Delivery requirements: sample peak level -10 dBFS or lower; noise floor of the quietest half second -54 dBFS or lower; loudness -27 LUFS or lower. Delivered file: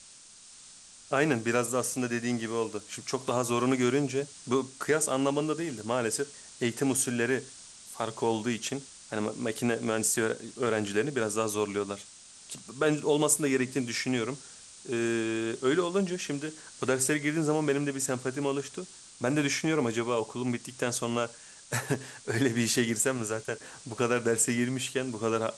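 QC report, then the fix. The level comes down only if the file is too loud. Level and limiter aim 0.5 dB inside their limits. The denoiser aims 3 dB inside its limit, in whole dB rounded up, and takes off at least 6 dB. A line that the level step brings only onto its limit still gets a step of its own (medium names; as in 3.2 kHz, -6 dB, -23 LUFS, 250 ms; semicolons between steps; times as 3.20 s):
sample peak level -11.5 dBFS: pass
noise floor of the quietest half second -52 dBFS: fail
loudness -29.5 LUFS: pass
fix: noise reduction 6 dB, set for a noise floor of -52 dBFS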